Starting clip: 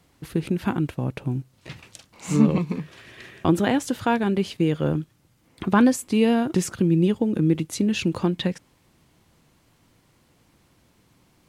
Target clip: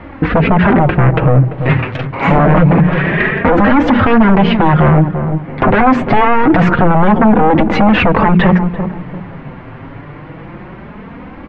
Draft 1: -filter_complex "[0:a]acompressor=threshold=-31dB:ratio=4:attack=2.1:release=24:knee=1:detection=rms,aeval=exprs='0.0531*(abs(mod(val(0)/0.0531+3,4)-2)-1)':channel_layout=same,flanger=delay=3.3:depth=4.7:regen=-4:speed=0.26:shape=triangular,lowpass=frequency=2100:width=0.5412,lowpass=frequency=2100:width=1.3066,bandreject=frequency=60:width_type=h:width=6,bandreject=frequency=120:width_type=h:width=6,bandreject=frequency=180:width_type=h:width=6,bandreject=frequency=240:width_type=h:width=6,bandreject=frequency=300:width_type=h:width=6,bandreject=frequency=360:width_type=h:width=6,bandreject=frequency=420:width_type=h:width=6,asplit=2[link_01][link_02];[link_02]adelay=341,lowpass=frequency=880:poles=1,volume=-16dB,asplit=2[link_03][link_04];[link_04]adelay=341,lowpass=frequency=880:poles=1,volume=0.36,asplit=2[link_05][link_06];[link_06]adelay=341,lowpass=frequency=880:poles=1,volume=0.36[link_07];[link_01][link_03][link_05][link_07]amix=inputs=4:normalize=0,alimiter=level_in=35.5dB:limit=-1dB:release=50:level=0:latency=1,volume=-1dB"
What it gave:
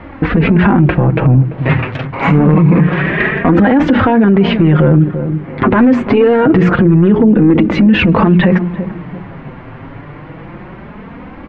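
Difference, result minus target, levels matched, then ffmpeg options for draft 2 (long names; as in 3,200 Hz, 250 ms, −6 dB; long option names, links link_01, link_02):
downward compressor: peak gain reduction +7 dB
-filter_complex "[0:a]acompressor=threshold=-21.5dB:ratio=4:attack=2.1:release=24:knee=1:detection=rms,aeval=exprs='0.0531*(abs(mod(val(0)/0.0531+3,4)-2)-1)':channel_layout=same,flanger=delay=3.3:depth=4.7:regen=-4:speed=0.26:shape=triangular,lowpass=frequency=2100:width=0.5412,lowpass=frequency=2100:width=1.3066,bandreject=frequency=60:width_type=h:width=6,bandreject=frequency=120:width_type=h:width=6,bandreject=frequency=180:width_type=h:width=6,bandreject=frequency=240:width_type=h:width=6,bandreject=frequency=300:width_type=h:width=6,bandreject=frequency=360:width_type=h:width=6,bandreject=frequency=420:width_type=h:width=6,asplit=2[link_01][link_02];[link_02]adelay=341,lowpass=frequency=880:poles=1,volume=-16dB,asplit=2[link_03][link_04];[link_04]adelay=341,lowpass=frequency=880:poles=1,volume=0.36,asplit=2[link_05][link_06];[link_06]adelay=341,lowpass=frequency=880:poles=1,volume=0.36[link_07];[link_01][link_03][link_05][link_07]amix=inputs=4:normalize=0,alimiter=level_in=35.5dB:limit=-1dB:release=50:level=0:latency=1,volume=-1dB"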